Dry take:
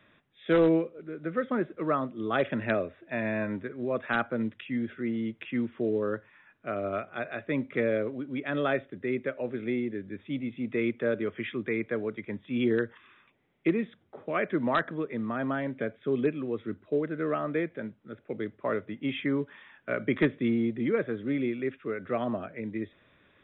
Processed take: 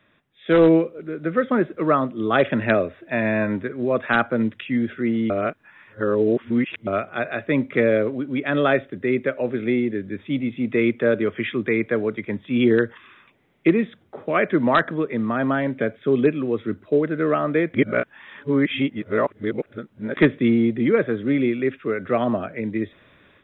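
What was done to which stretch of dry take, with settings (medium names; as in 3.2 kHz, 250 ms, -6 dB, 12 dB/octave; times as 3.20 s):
5.30–6.87 s: reverse
17.74–20.17 s: reverse
whole clip: level rider gain up to 9 dB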